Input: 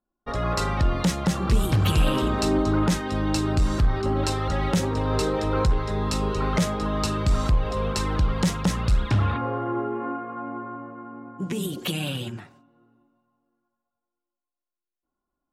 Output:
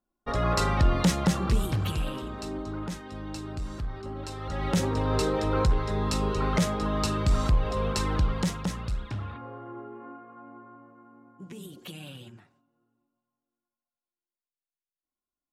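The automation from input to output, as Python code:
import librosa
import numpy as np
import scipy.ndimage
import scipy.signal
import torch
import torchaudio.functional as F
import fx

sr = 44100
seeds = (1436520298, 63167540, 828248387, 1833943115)

y = fx.gain(x, sr, db=fx.line((1.24, 0.0), (2.25, -13.0), (4.29, -13.0), (4.78, -2.0), (8.17, -2.0), (9.28, -14.0)))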